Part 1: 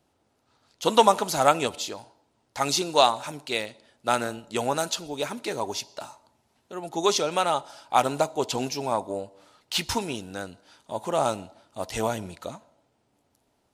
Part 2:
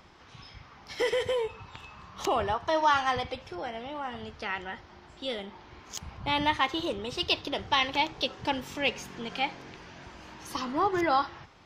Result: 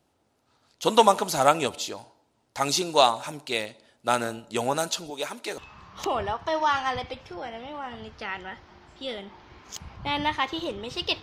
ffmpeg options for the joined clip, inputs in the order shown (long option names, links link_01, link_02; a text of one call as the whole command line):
ffmpeg -i cue0.wav -i cue1.wav -filter_complex "[0:a]asettb=1/sr,asplit=3[link_01][link_02][link_03];[link_01]atrim=end=5.104[link_04];[link_02]atrim=start=5.1:end=5.58,asetpts=PTS-STARTPTS,afade=type=in:duration=0.004:curve=qsin,afade=type=out:start_time=0.476:duration=0.004:curve=qsin,highpass=frequency=490:poles=1[link_05];[link_03]atrim=start=5.576[link_06];[link_04][link_05]acrossfade=duration=0.004:curve1=hsin:curve2=qsin[link_07];[link_07][link_06]acrossfade=duration=0.004:curve1=qsin:curve2=hsin,apad=whole_dur=11.22,atrim=end=11.22,atrim=end=5.582[link_08];[1:a]atrim=start=1.788:end=7.43[link_09];[link_08][link_09]acrossfade=duration=0.004:curve1=hsin:curve2=hsin" out.wav